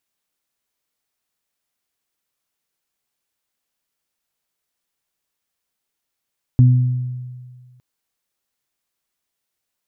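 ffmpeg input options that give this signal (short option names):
-f lavfi -i "aevalsrc='0.501*pow(10,-3*t/1.73)*sin(2*PI*125*t)+0.15*pow(10,-3*t/0.89)*sin(2*PI*250*t)':d=1.21:s=44100"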